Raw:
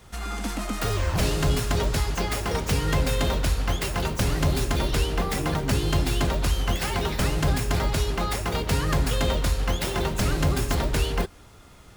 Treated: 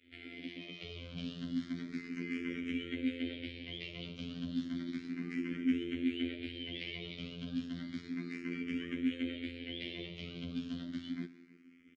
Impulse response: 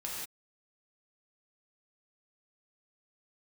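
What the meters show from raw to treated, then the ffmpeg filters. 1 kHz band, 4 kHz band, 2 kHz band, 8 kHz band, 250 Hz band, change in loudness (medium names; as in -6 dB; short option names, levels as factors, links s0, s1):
-32.0 dB, -13.5 dB, -13.5 dB, under -30 dB, -6.0 dB, -14.0 dB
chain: -filter_complex "[0:a]lowpass=4500,alimiter=limit=0.0891:level=0:latency=1:release=22,aeval=exprs='sgn(val(0))*max(abs(val(0))-0.002,0)':c=same,asplit=3[s0][s1][s2];[s0]bandpass=f=270:t=q:w=8,volume=1[s3];[s1]bandpass=f=2290:t=q:w=8,volume=0.501[s4];[s2]bandpass=f=3010:t=q:w=8,volume=0.355[s5];[s3][s4][s5]amix=inputs=3:normalize=0,aecho=1:1:307:0.0841,asplit=2[s6][s7];[1:a]atrim=start_sample=2205[s8];[s7][s8]afir=irnorm=-1:irlink=0,volume=0.211[s9];[s6][s9]amix=inputs=2:normalize=0,afftfilt=real='hypot(re,im)*cos(PI*b)':imag='0':win_size=2048:overlap=0.75,asplit=2[s10][s11];[s11]afreqshift=0.32[s12];[s10][s12]amix=inputs=2:normalize=1,volume=2.82"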